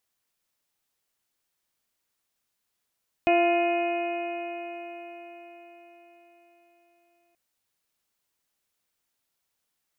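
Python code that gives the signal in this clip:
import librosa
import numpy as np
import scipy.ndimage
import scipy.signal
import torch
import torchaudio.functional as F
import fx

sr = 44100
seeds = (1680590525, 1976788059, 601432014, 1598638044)

y = fx.additive_stiff(sr, length_s=4.08, hz=343.0, level_db=-22.5, upper_db=(3.5, -15.5, -17.0, -17.5, -13, -4, -17), decay_s=4.9, stiffness=0.0017)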